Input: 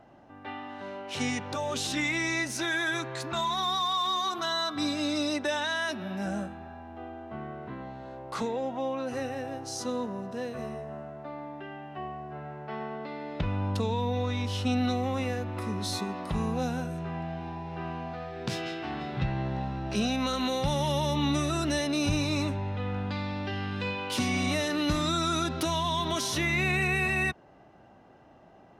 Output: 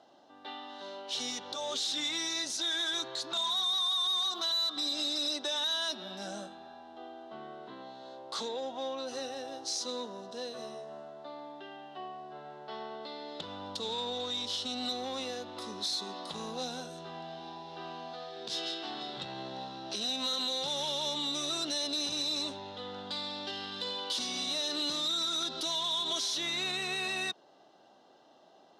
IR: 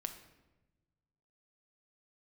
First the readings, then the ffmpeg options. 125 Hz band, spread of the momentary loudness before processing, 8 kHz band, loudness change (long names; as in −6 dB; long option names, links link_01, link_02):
−22.0 dB, 13 LU, −0.5 dB, −2.5 dB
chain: -af "highshelf=frequency=2900:width_type=q:width=3:gain=8,bandreject=frequency=2500:width=28,alimiter=limit=-17.5dB:level=0:latency=1:release=112,asoftclip=type=tanh:threshold=-23.5dB,highpass=340,lowpass=7700,volume=-3dB"